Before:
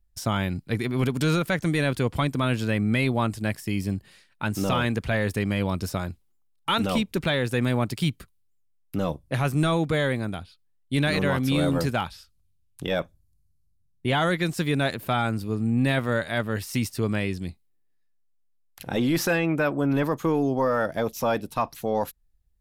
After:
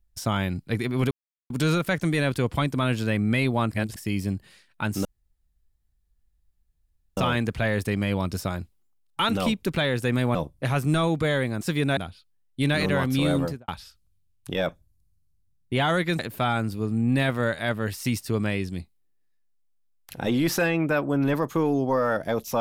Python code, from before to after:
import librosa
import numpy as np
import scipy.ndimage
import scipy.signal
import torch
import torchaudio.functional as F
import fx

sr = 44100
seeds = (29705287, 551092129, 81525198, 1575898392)

y = fx.studio_fade_out(x, sr, start_s=11.68, length_s=0.33)
y = fx.edit(y, sr, fx.insert_silence(at_s=1.11, length_s=0.39),
    fx.reverse_span(start_s=3.32, length_s=0.25),
    fx.insert_room_tone(at_s=4.66, length_s=2.12),
    fx.cut(start_s=7.84, length_s=1.2),
    fx.move(start_s=14.52, length_s=0.36, to_s=10.3), tone=tone)